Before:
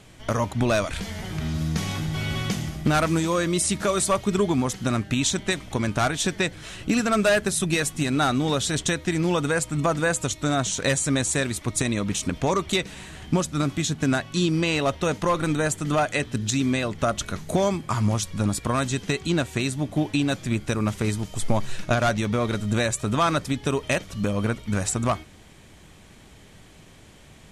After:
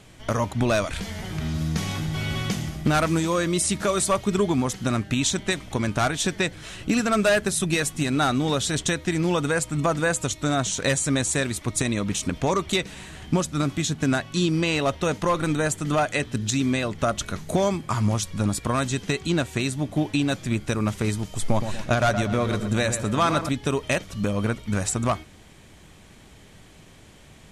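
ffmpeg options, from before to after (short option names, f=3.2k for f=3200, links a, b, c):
-filter_complex "[0:a]asettb=1/sr,asplit=3[a][b][c];[a]atrim=end=21.454[d];[b]atrim=start=21.45:end=23.49,asetpts=PTS-STARTPTS,afade=t=in:d=0.004:c=qsin,afade=t=out:st=2.036:d=0.004:c=qsin,asplit=2[e][f];[f]adelay=119,lowpass=f=2k:p=1,volume=-8dB,asplit=2[g][h];[h]adelay=119,lowpass=f=2k:p=1,volume=0.49,asplit=2[i][j];[j]adelay=119,lowpass=f=2k:p=1,volume=0.49,asplit=2[k][l];[l]adelay=119,lowpass=f=2k:p=1,volume=0.49,asplit=2[m][n];[n]adelay=119,lowpass=f=2k:p=1,volume=0.49,asplit=2[o][p];[p]adelay=119,lowpass=f=2k:p=1,volume=0.49[q];[e][g][i][k][m][o][q]amix=inputs=7:normalize=0,atrim=end_sample=89964[r];[c]atrim=start=23.486[s];[d][r]acrossfade=d=0.004:c1=hsin:c2=qsin[t];[t][s]acrossfade=d=0.004:c1=qsin:c2=hsin"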